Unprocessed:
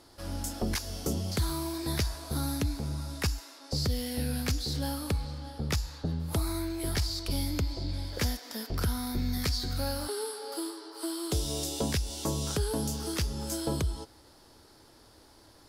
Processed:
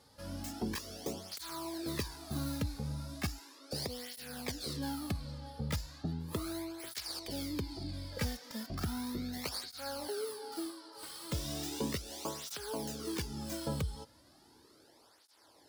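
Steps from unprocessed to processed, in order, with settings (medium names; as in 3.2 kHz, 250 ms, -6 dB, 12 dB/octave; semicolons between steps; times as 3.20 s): tracing distortion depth 0.12 ms; cancelling through-zero flanger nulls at 0.36 Hz, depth 3.1 ms; trim -2.5 dB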